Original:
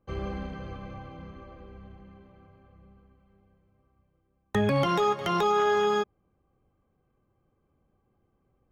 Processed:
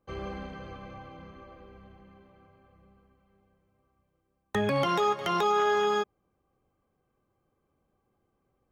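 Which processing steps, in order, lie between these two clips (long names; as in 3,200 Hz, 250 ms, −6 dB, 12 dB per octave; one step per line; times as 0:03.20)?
low-shelf EQ 240 Hz −7.5 dB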